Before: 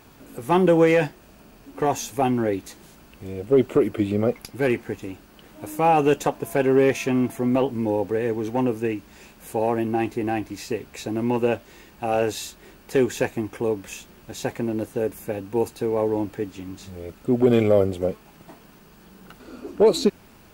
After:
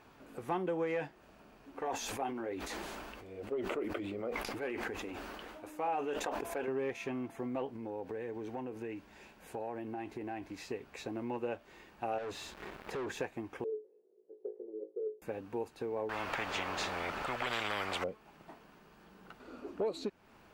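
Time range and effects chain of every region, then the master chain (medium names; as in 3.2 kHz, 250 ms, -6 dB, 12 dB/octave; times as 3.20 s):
1.79–6.68 s: peaking EQ 140 Hz -11.5 dB 0.99 oct + flange 1.3 Hz, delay 0.4 ms, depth 8.3 ms, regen -64% + decay stretcher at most 21 dB/s
7.76–10.54 s: band-stop 1.2 kHz, Q 11 + compression 4:1, threshold -27 dBFS
12.18–13.12 s: waveshaping leveller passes 5 + compression 3:1, threshold -32 dBFS + treble shelf 3.6 kHz -7.5 dB
13.64–15.22 s: Butterworth band-pass 420 Hz, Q 4.4 + flutter echo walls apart 3.2 m, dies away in 0.22 s
16.09–18.04 s: treble shelf 6.3 kHz -12 dB + spectrum-flattening compressor 10:1
whole clip: low-pass 1.6 kHz 6 dB/octave; compression 2.5:1, threshold -29 dBFS; bass shelf 400 Hz -11 dB; trim -2.5 dB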